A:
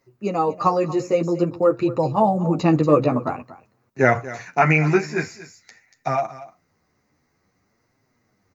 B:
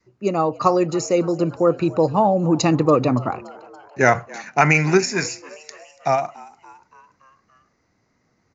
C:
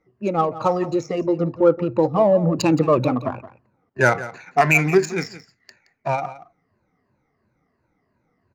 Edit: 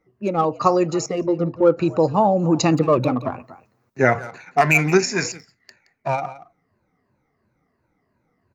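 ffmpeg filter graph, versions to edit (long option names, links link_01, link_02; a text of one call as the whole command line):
ffmpeg -i take0.wav -i take1.wav -i take2.wav -filter_complex "[1:a]asplit=3[link_01][link_02][link_03];[2:a]asplit=5[link_04][link_05][link_06][link_07][link_08];[link_04]atrim=end=0.452[link_09];[link_01]atrim=start=0.448:end=1.062[link_10];[link_05]atrim=start=1.058:end=1.8[link_11];[link_02]atrim=start=1.76:end=2.78[link_12];[link_06]atrim=start=2.74:end=3.49[link_13];[0:a]atrim=start=3.25:end=4.31[link_14];[link_07]atrim=start=4.07:end=4.922[link_15];[link_03]atrim=start=4.918:end=5.322[link_16];[link_08]atrim=start=5.318[link_17];[link_09][link_10]acrossfade=duration=0.004:curve1=hsin:curve2=hsin[link_18];[link_18][link_11]acrossfade=duration=0.004:curve1=hsin:curve2=hsin[link_19];[link_19][link_12]acrossfade=duration=0.04:curve1=tri:curve2=tri[link_20];[link_20][link_13]acrossfade=duration=0.04:curve1=tri:curve2=tri[link_21];[link_21][link_14]acrossfade=duration=0.24:curve1=tri:curve2=tri[link_22];[link_22][link_15]acrossfade=duration=0.24:curve1=tri:curve2=tri[link_23];[link_23][link_16]acrossfade=duration=0.004:curve1=hsin:curve2=hsin[link_24];[link_24][link_17]acrossfade=duration=0.004:curve1=hsin:curve2=hsin" out.wav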